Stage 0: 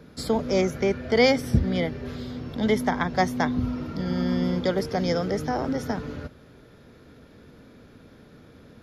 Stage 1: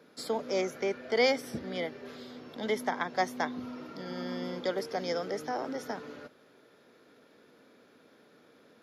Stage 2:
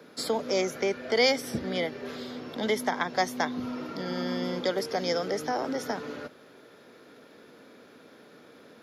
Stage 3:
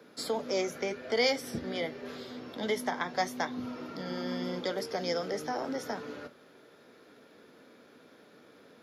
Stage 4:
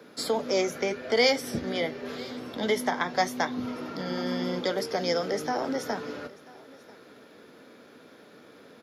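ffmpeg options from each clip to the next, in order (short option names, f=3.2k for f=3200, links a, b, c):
-af "highpass=340,volume=-5.5dB"
-filter_complex "[0:a]acrossover=split=130|3000[a][b][c];[b]acompressor=threshold=-39dB:ratio=1.5[d];[a][d][c]amix=inputs=3:normalize=0,volume=7.5dB"
-af "flanger=delay=8.8:depth=5:regen=-63:speed=0.83:shape=triangular"
-af "aecho=1:1:990:0.0708,volume=5dB"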